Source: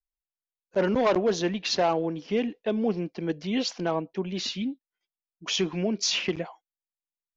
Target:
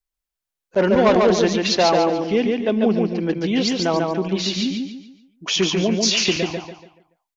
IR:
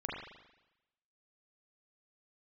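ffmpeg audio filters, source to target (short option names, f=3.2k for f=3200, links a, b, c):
-af "aecho=1:1:143|286|429|572|715:0.708|0.248|0.0867|0.0304|0.0106,volume=6.5dB"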